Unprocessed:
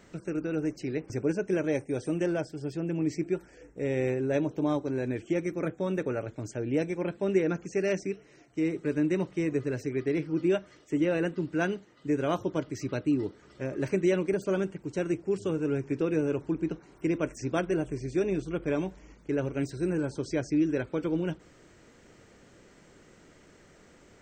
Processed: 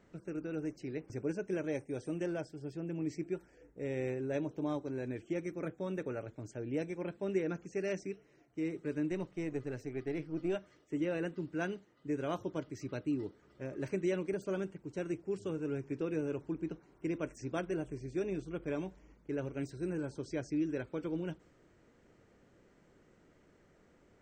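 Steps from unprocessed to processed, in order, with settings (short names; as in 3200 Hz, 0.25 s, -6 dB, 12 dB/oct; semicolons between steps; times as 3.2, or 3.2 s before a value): 9.11–10.56 half-wave gain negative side -3 dB; mismatched tape noise reduction decoder only; gain -8 dB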